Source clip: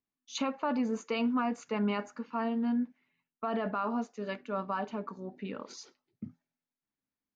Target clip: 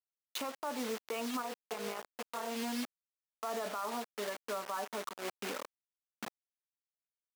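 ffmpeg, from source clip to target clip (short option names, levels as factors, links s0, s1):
-filter_complex "[0:a]asplit=3[s0][s1][s2];[s0]afade=t=out:st=1.41:d=0.02[s3];[s1]tremolo=f=260:d=0.857,afade=t=in:st=1.41:d=0.02,afade=t=out:st=2.47:d=0.02[s4];[s2]afade=t=in:st=2.47:d=0.02[s5];[s3][s4][s5]amix=inputs=3:normalize=0,lowpass=f=1400:p=1,acrusher=bits=6:mix=0:aa=0.000001,highpass=470,alimiter=level_in=3.16:limit=0.0631:level=0:latency=1:release=240,volume=0.316,volume=2.11"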